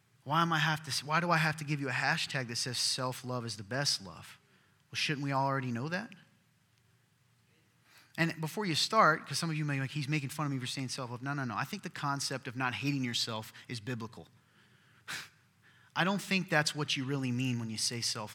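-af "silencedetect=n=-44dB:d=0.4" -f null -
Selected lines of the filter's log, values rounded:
silence_start: 4.32
silence_end: 4.93 | silence_duration: 0.61
silence_start: 6.12
silence_end: 7.98 | silence_duration: 1.85
silence_start: 14.22
silence_end: 15.08 | silence_duration: 0.86
silence_start: 15.25
silence_end: 15.96 | silence_duration: 0.70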